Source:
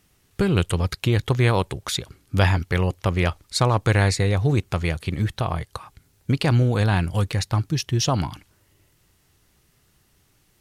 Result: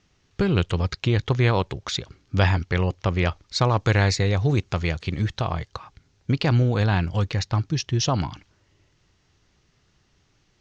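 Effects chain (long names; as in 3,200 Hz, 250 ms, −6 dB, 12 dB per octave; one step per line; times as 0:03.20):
Butterworth low-pass 6,700 Hz 48 dB per octave
0:03.75–0:05.69: high-shelf EQ 5,300 Hz +6 dB
level −1 dB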